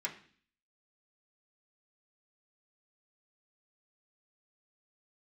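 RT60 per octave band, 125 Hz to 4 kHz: 0.60 s, 0.65 s, 0.50 s, 0.45 s, 0.55 s, 0.55 s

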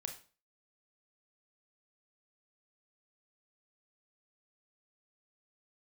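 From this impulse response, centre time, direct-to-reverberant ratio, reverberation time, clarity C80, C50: 14 ms, 4.0 dB, 0.40 s, 15.0 dB, 9.5 dB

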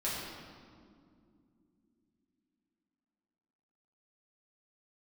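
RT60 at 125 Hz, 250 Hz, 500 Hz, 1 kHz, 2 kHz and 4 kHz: 3.5 s, 4.5 s, 3.0 s, 2.0 s, 1.5 s, 1.3 s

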